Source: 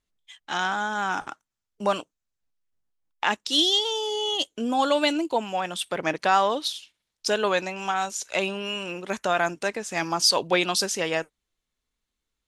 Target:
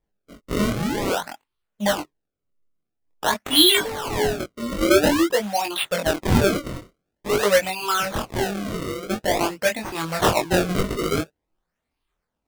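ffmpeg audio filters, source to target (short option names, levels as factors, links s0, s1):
-af "afftfilt=real='re*pow(10,18/40*sin(2*PI*(0.63*log(max(b,1)*sr/1024/100)/log(2)-(1.9)*(pts-256)/sr)))':imag='im*pow(10,18/40*sin(2*PI*(0.63*log(max(b,1)*sr/1024/100)/log(2)-(1.9)*(pts-256)/sr)))':win_size=1024:overlap=0.75,acrusher=samples=30:mix=1:aa=0.000001:lfo=1:lforange=48:lforate=0.48,flanger=delay=19.5:depth=6:speed=0.54,volume=1.33"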